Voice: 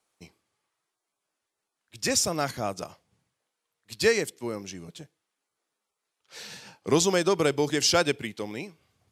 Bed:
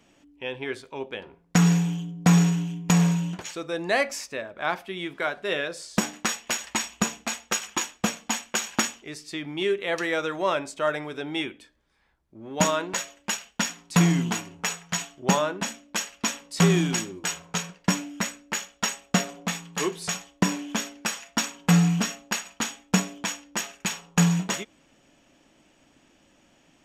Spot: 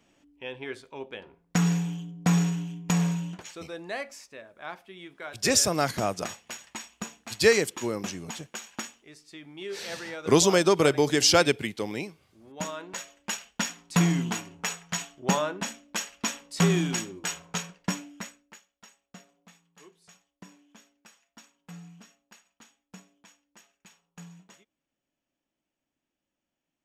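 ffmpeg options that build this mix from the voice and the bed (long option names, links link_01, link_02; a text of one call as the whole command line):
ffmpeg -i stem1.wav -i stem2.wav -filter_complex "[0:a]adelay=3400,volume=2.5dB[link_01];[1:a]volume=4dB,afade=type=out:start_time=3.19:duration=0.84:silence=0.446684,afade=type=in:start_time=12.76:duration=0.65:silence=0.354813,afade=type=out:start_time=17.53:duration=1.08:silence=0.0668344[link_02];[link_01][link_02]amix=inputs=2:normalize=0" out.wav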